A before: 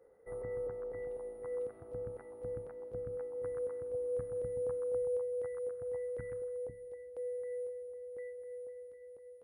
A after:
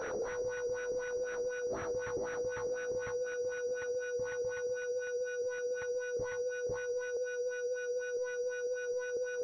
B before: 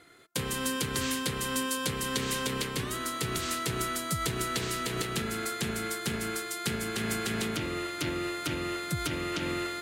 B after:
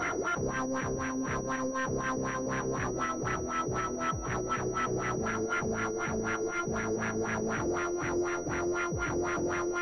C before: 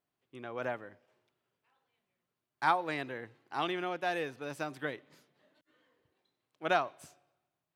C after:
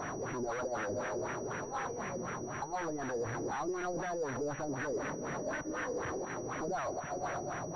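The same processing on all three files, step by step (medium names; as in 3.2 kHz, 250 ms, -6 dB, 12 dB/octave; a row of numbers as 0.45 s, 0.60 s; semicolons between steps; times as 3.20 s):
one-bit comparator; LFO low-pass sine 4 Hz 410–1900 Hz; class-D stage that switches slowly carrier 5.8 kHz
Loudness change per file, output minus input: +3.0 LU, -0.5 LU, -2.5 LU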